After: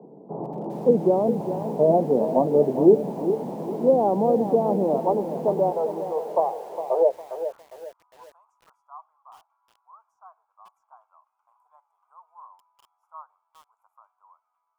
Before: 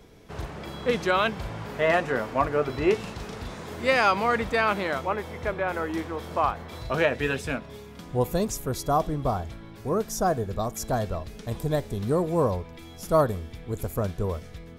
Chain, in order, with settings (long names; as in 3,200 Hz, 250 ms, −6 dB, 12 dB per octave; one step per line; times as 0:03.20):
Butterworth high-pass 150 Hz 48 dB per octave, from 0:05.70 410 Hz, from 0:07.10 1,200 Hz
treble cut that deepens with the level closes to 620 Hz, closed at −21.5 dBFS
elliptic low-pass filter 880 Hz, stop band 50 dB
feedback echo at a low word length 406 ms, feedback 35%, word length 9 bits, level −10 dB
level +8.5 dB